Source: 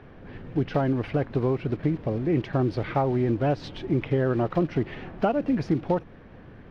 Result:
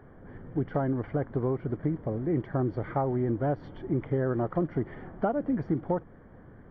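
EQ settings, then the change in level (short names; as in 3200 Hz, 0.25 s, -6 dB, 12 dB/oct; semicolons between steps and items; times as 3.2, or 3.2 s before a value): polynomial smoothing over 41 samples; -4.0 dB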